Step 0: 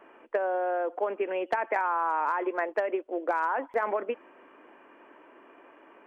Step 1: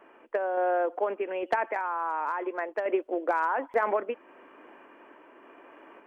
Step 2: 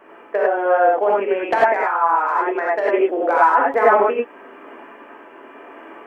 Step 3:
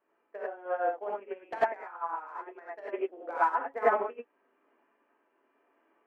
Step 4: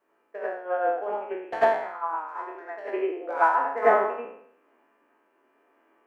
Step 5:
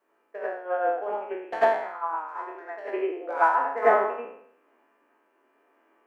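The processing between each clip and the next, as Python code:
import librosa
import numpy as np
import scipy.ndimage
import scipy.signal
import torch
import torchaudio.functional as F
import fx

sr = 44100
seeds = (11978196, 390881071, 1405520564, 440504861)

y1 = fx.tremolo_random(x, sr, seeds[0], hz=3.5, depth_pct=55)
y1 = y1 * 10.0 ** (3.5 / 20.0)
y2 = fx.rev_gated(y1, sr, seeds[1], gate_ms=120, shape='rising', drr_db=-4.0)
y2 = y2 * 10.0 ** (6.5 / 20.0)
y3 = fx.upward_expand(y2, sr, threshold_db=-24.0, expansion=2.5)
y3 = y3 * 10.0 ** (-9.0 / 20.0)
y4 = fx.spec_trails(y3, sr, decay_s=0.68)
y4 = y4 * 10.0 ** (3.5 / 20.0)
y5 = fx.peak_eq(y4, sr, hz=100.0, db=-7.5, octaves=1.4)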